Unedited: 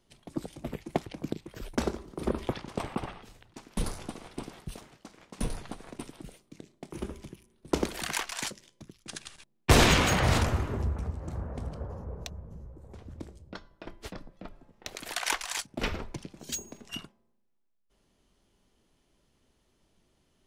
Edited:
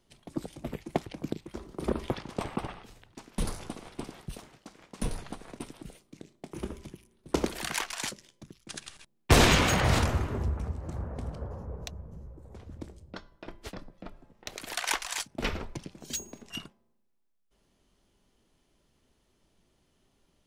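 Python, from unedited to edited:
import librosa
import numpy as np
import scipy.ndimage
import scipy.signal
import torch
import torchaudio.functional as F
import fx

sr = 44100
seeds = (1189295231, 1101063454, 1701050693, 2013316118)

y = fx.edit(x, sr, fx.cut(start_s=1.54, length_s=0.39), tone=tone)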